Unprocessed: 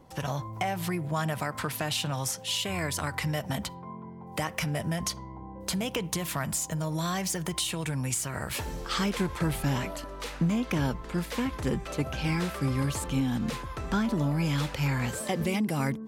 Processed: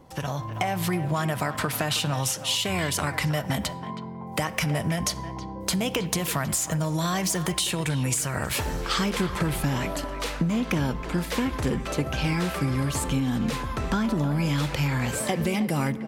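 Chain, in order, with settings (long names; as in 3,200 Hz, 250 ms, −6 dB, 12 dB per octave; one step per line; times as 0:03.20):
on a send at −17 dB: convolution reverb RT60 1.2 s, pre-delay 7 ms
on the sum: downward compressor, threshold −28 dBFS, peak gain reduction 6.5 dB
far-end echo of a speakerphone 320 ms, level −11 dB
automatic gain control gain up to 3.5 dB
level +3 dB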